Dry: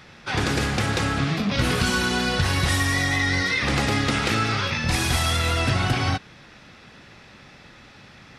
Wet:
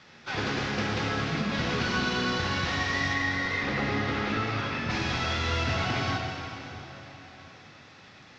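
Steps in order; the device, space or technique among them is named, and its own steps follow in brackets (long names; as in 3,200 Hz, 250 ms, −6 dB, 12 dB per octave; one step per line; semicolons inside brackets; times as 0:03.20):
early wireless headset (high-pass filter 150 Hz 6 dB per octave; variable-slope delta modulation 32 kbit/s)
0:03.13–0:04.90: high-shelf EQ 3,900 Hz −11.5 dB
dense smooth reverb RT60 4 s, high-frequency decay 0.8×, DRR 1 dB
level −6 dB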